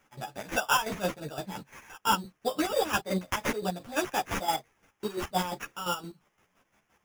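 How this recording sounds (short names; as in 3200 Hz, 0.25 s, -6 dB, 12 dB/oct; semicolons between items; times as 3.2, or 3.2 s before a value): a quantiser's noise floor 12-bit, dither triangular; chopped level 5.8 Hz, depth 65%, duty 40%; aliases and images of a low sample rate 4200 Hz, jitter 0%; a shimmering, thickened sound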